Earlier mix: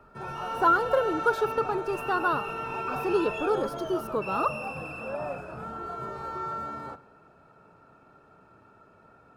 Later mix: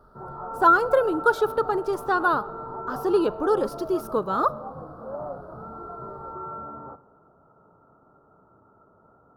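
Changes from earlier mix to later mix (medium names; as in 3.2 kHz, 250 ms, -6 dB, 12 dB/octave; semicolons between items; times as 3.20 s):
speech +4.5 dB; background: add elliptic low-pass 1.3 kHz, stop band 50 dB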